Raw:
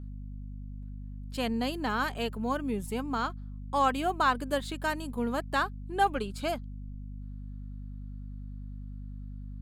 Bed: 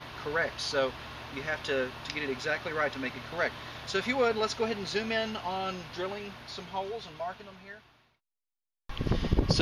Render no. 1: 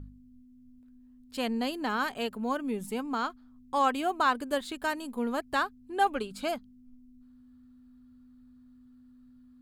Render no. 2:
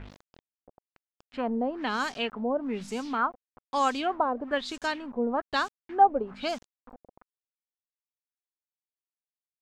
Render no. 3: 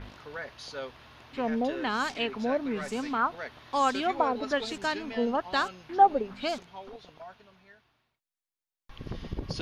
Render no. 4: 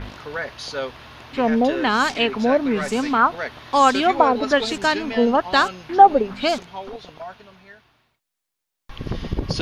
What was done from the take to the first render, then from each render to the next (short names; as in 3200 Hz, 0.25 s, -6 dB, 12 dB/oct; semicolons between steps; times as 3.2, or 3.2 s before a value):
de-hum 50 Hz, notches 4
bit-crush 8-bit; LFO low-pass sine 1.1 Hz 590–7000 Hz
add bed -9.5 dB
gain +10.5 dB; limiter -1 dBFS, peak gain reduction 2.5 dB